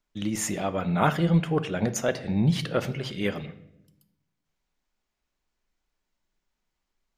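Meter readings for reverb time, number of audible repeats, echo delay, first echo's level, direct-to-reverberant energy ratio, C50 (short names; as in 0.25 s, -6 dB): 0.85 s, none, none, none, 11.5 dB, 15.5 dB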